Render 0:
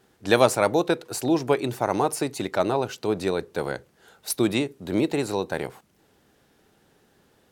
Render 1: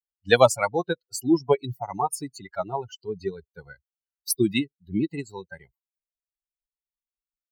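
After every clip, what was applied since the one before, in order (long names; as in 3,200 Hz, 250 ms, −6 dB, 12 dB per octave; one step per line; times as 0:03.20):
spectral dynamics exaggerated over time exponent 3
level +5.5 dB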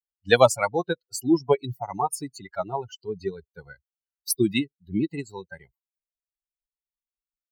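no processing that can be heard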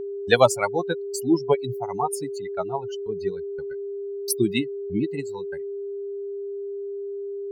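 noise gate −42 dBFS, range −33 dB
steady tone 400 Hz −29 dBFS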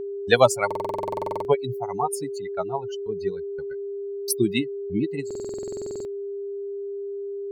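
buffer that repeats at 0:00.66/0:05.26, samples 2,048, times 16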